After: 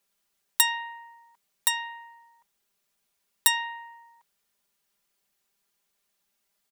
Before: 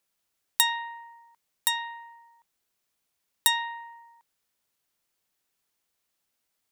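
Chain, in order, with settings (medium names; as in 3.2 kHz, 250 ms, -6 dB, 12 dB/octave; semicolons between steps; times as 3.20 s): comb 5 ms, depth 86%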